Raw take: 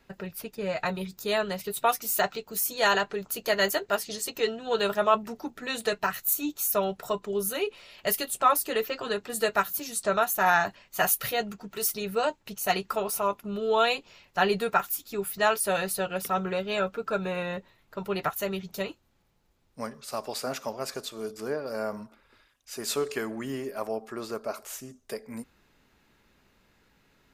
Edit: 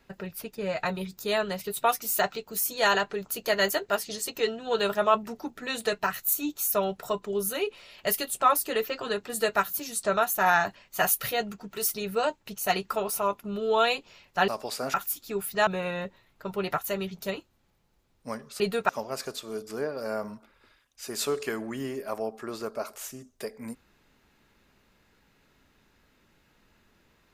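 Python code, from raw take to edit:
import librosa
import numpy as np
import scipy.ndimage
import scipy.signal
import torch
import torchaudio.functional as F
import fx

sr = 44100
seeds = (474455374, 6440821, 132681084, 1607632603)

y = fx.edit(x, sr, fx.swap(start_s=14.48, length_s=0.29, other_s=20.12, other_length_s=0.46),
    fx.cut(start_s=15.5, length_s=1.69), tone=tone)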